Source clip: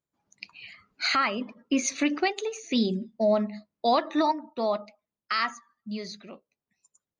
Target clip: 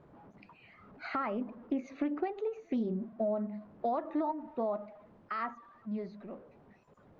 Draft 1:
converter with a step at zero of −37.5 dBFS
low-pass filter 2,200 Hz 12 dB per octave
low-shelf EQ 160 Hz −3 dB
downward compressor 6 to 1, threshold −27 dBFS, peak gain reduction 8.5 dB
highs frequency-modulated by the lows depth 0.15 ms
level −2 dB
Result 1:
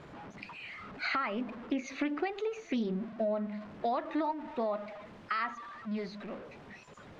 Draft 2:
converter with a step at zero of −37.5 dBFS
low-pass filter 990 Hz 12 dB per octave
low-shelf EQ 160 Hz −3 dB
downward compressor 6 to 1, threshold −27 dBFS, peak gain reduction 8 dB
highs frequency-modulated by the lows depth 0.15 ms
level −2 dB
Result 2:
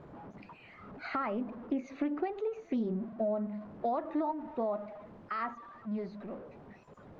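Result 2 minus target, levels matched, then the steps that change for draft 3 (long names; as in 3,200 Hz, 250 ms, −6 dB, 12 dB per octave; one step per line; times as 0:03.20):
converter with a step at zero: distortion +7 dB
change: converter with a step at zero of −45 dBFS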